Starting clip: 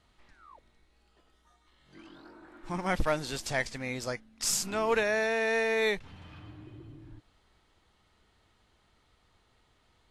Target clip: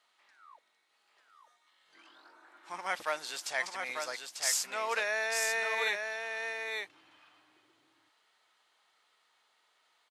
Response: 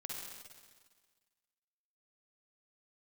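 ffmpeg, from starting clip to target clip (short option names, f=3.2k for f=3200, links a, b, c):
-filter_complex "[0:a]highpass=800,asplit=2[a][b];[b]aecho=0:1:894:0.562[c];[a][c]amix=inputs=2:normalize=0,volume=-1dB"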